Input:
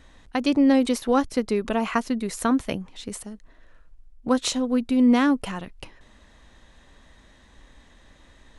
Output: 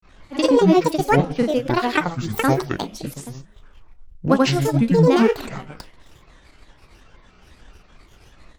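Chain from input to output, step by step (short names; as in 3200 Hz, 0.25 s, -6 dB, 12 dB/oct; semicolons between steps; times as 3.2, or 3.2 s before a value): Schroeder reverb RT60 0.57 s, DRR 8 dB; transient shaper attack +2 dB, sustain -7 dB; grains 0.148 s, grains 20/s, pitch spread up and down by 12 st; gain +6.5 dB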